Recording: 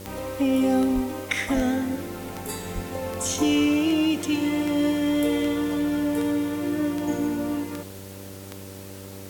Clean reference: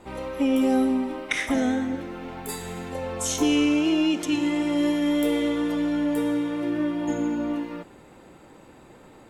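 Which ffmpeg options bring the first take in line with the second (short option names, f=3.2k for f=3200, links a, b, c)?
-filter_complex "[0:a]adeclick=t=4,bandreject=f=96.8:t=h:w=4,bandreject=f=193.6:t=h:w=4,bandreject=f=290.4:t=h:w=4,bandreject=f=387.2:t=h:w=4,bandreject=f=484:t=h:w=4,bandreject=f=580.8:t=h:w=4,asplit=3[a][b][c];[a]afade=t=out:st=0.94:d=0.02[d];[b]highpass=f=140:w=0.5412,highpass=f=140:w=1.3066,afade=t=in:st=0.94:d=0.02,afade=t=out:st=1.06:d=0.02[e];[c]afade=t=in:st=1.06:d=0.02[f];[d][e][f]amix=inputs=3:normalize=0,asplit=3[g][h][i];[g]afade=t=out:st=1.55:d=0.02[j];[h]highpass=f=140:w=0.5412,highpass=f=140:w=1.3066,afade=t=in:st=1.55:d=0.02,afade=t=out:st=1.67:d=0.02[k];[i]afade=t=in:st=1.67:d=0.02[l];[j][k][l]amix=inputs=3:normalize=0,asplit=3[m][n][o];[m]afade=t=out:st=2.74:d=0.02[p];[n]highpass=f=140:w=0.5412,highpass=f=140:w=1.3066,afade=t=in:st=2.74:d=0.02,afade=t=out:st=2.86:d=0.02[q];[o]afade=t=in:st=2.86:d=0.02[r];[p][q][r]amix=inputs=3:normalize=0,afwtdn=0.005"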